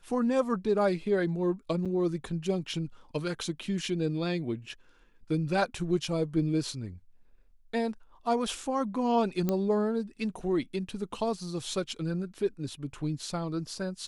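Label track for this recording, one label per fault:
1.850000	1.860000	gap 6.4 ms
9.490000	9.490000	pop -15 dBFS

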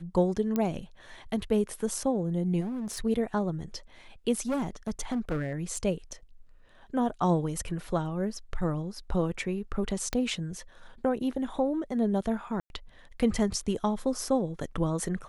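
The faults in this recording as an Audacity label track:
0.560000	0.560000	pop -16 dBFS
2.600000	3.010000	clipped -30.5 dBFS
4.480000	5.780000	clipped -25.5 dBFS
10.130000	10.130000	pop -14 dBFS
12.600000	12.700000	gap 0.101 s

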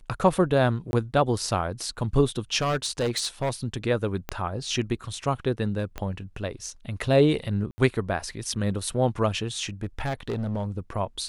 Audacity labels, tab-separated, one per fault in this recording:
0.910000	0.930000	gap 21 ms
2.580000	3.500000	clipped -21 dBFS
4.290000	4.290000	pop -14 dBFS
5.980000	5.980000	pop -17 dBFS
7.710000	7.780000	gap 70 ms
9.830000	10.660000	clipped -24 dBFS

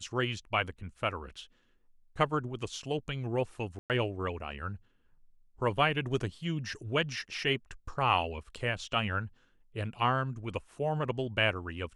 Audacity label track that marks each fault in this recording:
3.790000	3.900000	gap 0.108 s

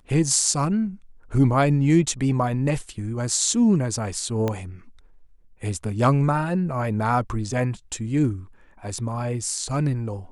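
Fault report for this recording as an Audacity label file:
4.480000	4.480000	pop -12 dBFS

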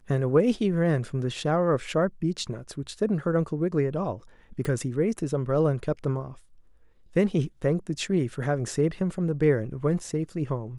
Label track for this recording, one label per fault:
4.650000	4.650000	pop -19 dBFS

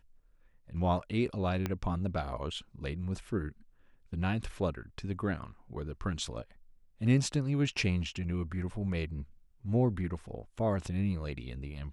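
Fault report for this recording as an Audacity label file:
1.660000	1.660000	pop -18 dBFS

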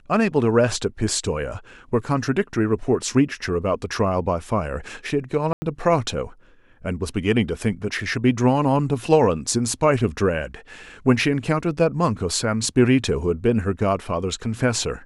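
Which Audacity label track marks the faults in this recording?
5.530000	5.620000	gap 90 ms

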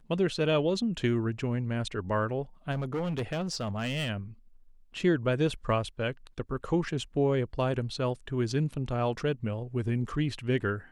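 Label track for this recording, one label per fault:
2.710000	4.100000	clipped -27.5 dBFS

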